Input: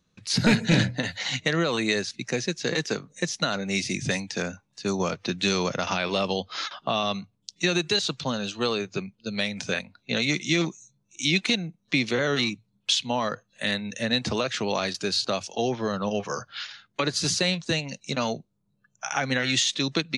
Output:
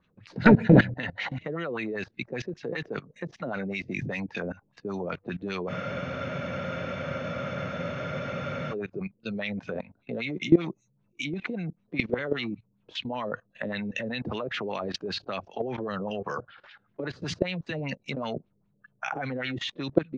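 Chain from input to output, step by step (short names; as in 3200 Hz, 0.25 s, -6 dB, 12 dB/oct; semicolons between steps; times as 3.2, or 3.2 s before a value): LFO low-pass sine 5.1 Hz 390–2900 Hz; level quantiser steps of 19 dB; spectral freeze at 5.71, 3.01 s; gain +6 dB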